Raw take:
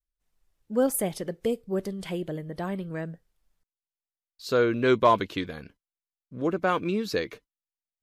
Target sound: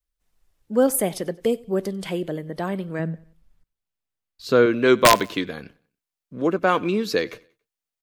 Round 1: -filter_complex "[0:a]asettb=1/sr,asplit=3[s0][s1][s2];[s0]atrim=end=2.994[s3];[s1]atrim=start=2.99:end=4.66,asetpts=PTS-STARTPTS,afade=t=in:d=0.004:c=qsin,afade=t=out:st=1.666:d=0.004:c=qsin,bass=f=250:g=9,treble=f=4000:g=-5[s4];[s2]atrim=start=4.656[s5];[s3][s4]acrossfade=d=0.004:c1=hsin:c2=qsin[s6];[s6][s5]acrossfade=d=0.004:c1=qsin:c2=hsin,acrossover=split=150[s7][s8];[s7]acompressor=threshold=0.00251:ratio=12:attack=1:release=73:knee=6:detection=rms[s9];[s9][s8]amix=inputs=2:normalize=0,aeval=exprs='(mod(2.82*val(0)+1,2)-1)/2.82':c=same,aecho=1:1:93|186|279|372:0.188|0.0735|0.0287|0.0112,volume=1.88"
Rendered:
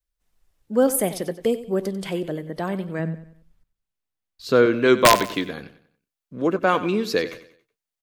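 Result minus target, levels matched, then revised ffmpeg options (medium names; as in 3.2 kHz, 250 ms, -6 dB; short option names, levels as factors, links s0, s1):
echo-to-direct +5.5 dB
-filter_complex "[0:a]asettb=1/sr,asplit=3[s0][s1][s2];[s0]atrim=end=2.994[s3];[s1]atrim=start=2.99:end=4.66,asetpts=PTS-STARTPTS,afade=t=in:d=0.004:c=qsin,afade=t=out:st=1.666:d=0.004:c=qsin,bass=f=250:g=9,treble=f=4000:g=-5[s4];[s2]atrim=start=4.656[s5];[s3][s4]acrossfade=d=0.004:c1=hsin:c2=qsin[s6];[s6][s5]acrossfade=d=0.004:c1=qsin:c2=hsin,acrossover=split=150[s7][s8];[s7]acompressor=threshold=0.00251:ratio=12:attack=1:release=73:knee=6:detection=rms[s9];[s9][s8]amix=inputs=2:normalize=0,aeval=exprs='(mod(2.82*val(0)+1,2)-1)/2.82':c=same,aecho=1:1:93|186|279:0.0668|0.0261|0.0102,volume=1.88"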